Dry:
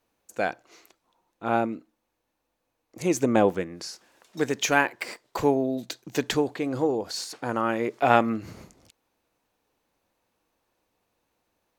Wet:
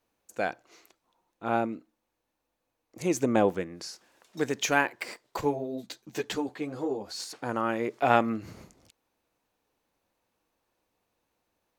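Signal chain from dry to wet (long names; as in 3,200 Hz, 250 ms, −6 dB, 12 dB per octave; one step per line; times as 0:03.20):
0:05.41–0:07.20: string-ensemble chorus
level −3 dB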